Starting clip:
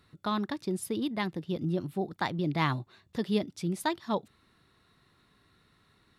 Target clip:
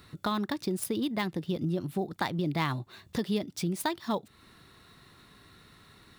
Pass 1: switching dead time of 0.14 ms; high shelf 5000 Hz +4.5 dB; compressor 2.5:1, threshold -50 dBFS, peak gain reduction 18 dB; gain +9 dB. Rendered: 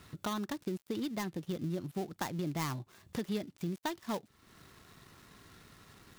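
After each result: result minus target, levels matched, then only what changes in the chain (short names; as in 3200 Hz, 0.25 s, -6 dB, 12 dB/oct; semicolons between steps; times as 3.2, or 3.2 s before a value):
switching dead time: distortion +14 dB; compressor: peak gain reduction +5.5 dB
change: switching dead time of 0.03 ms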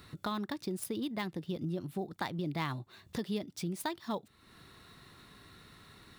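compressor: peak gain reduction +5.5 dB
change: compressor 2.5:1, threshold -40.5 dBFS, peak gain reduction 12 dB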